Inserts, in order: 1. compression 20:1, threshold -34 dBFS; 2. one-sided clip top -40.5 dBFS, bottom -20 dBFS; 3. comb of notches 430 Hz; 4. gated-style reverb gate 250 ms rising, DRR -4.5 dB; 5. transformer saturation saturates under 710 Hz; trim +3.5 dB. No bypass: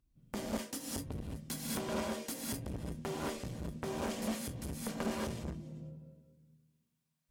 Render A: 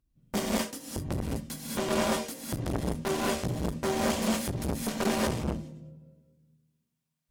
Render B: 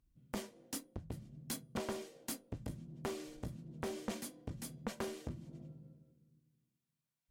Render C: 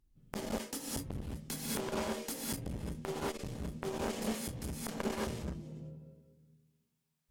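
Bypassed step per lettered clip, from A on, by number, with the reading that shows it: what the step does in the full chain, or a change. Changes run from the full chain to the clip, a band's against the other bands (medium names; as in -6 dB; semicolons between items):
1, mean gain reduction 10.0 dB; 4, crest factor change +5.5 dB; 3, crest factor change +2.0 dB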